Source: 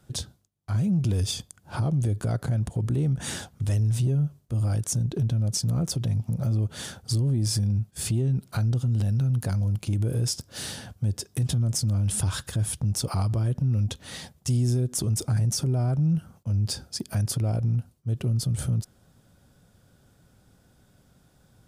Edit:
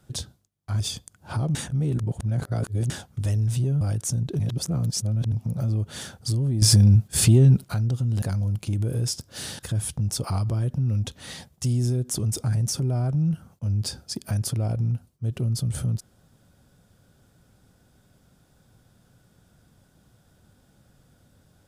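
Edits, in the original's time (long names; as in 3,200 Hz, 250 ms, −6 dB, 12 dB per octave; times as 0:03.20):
0:00.80–0:01.23: remove
0:01.98–0:03.33: reverse
0:04.24–0:04.64: remove
0:05.22–0:06.15: reverse
0:07.45–0:08.47: clip gain +9.5 dB
0:09.05–0:09.42: remove
0:10.79–0:12.43: remove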